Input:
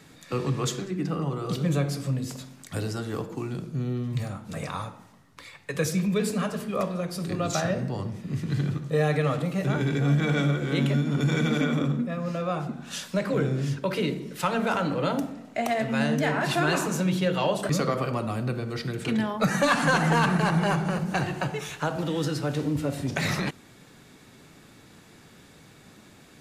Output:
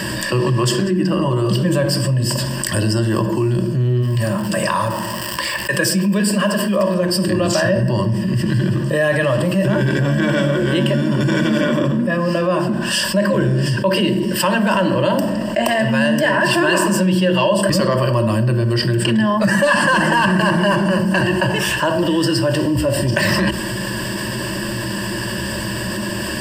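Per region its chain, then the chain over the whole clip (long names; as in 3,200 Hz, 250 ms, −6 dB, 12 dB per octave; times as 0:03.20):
0:04.01–0:06.94: high-pass filter 200 Hz 6 dB per octave + surface crackle 370 per second −44 dBFS
whole clip: EQ curve with evenly spaced ripples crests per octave 1.3, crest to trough 17 dB; envelope flattener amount 70%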